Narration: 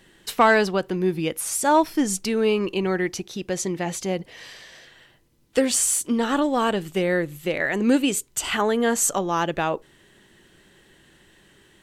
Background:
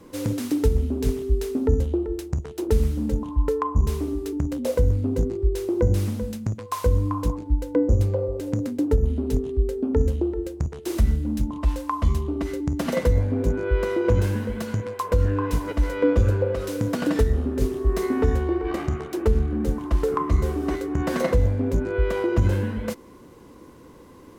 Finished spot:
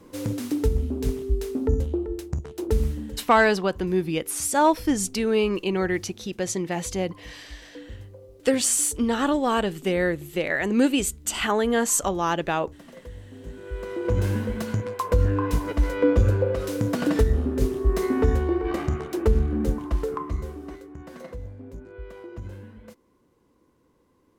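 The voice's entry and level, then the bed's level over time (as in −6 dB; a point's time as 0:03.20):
2.90 s, −1.0 dB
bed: 0:02.90 −2.5 dB
0:03.34 −21.5 dB
0:13.25 −21.5 dB
0:14.32 0 dB
0:19.68 0 dB
0:21.05 −17.5 dB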